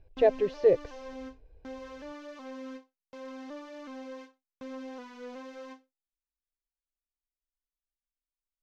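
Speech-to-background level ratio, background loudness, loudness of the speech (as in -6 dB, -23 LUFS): 18.5 dB, -44.5 LUFS, -26.0 LUFS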